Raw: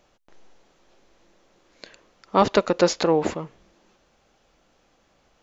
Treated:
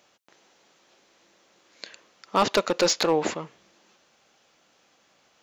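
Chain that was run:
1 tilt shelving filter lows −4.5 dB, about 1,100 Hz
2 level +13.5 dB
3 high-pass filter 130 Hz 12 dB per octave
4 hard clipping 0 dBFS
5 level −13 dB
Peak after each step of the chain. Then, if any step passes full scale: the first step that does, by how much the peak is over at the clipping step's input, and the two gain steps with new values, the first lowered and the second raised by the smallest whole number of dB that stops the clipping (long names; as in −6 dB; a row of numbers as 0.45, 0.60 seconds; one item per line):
−4.0, +9.5, +9.5, 0.0, −13.0 dBFS
step 2, 9.5 dB
step 2 +3.5 dB, step 5 −3 dB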